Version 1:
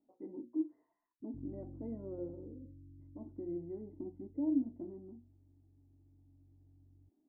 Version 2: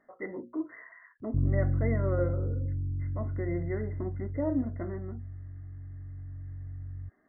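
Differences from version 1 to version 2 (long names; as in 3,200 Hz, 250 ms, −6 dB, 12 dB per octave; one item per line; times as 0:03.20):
background +10.0 dB
master: remove formant resonators in series u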